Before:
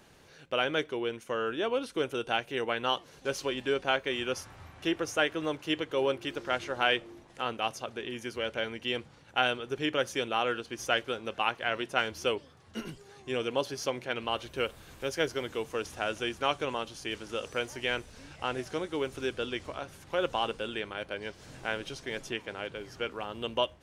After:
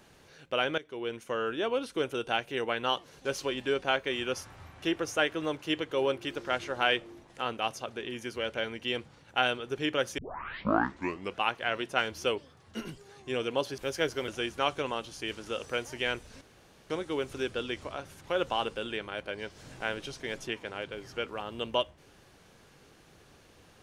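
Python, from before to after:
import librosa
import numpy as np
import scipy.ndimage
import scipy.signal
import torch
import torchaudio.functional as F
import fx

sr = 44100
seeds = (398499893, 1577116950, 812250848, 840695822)

y = fx.edit(x, sr, fx.fade_in_from(start_s=0.78, length_s=0.37, floor_db=-20.0),
    fx.tape_start(start_s=10.18, length_s=1.23),
    fx.cut(start_s=13.78, length_s=1.19),
    fx.cut(start_s=15.47, length_s=0.64),
    fx.room_tone_fill(start_s=18.24, length_s=0.49), tone=tone)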